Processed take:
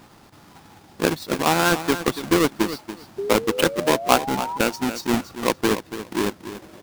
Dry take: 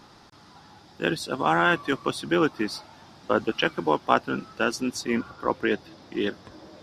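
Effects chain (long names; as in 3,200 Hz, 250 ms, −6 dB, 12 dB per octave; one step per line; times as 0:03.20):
each half-wave held at its own peak
sound drawn into the spectrogram rise, 0:03.18–0:04.58, 390–1,000 Hz −26 dBFS
transient designer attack +4 dB, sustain −4 dB
on a send: repeating echo 284 ms, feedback 17%, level −12 dB
on the sum: level −2.5 dB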